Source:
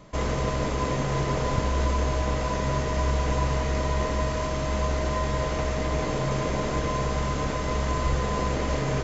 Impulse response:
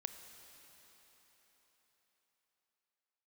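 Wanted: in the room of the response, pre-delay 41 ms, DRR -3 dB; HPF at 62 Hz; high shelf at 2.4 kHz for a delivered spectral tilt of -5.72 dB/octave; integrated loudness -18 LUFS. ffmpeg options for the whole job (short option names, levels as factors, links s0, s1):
-filter_complex "[0:a]highpass=62,highshelf=f=2400:g=-3.5,asplit=2[s0][s1];[1:a]atrim=start_sample=2205,adelay=41[s2];[s1][s2]afir=irnorm=-1:irlink=0,volume=1.88[s3];[s0][s3]amix=inputs=2:normalize=0,volume=2"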